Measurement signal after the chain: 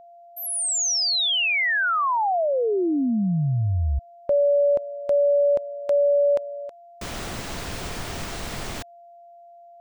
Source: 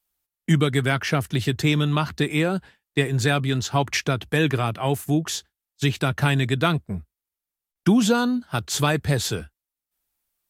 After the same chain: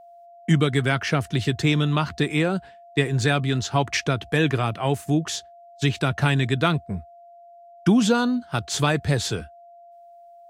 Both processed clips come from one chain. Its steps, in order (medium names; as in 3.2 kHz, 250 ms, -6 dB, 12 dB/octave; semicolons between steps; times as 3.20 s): peaking EQ 13 kHz -13 dB 0.49 oct; whistle 690 Hz -45 dBFS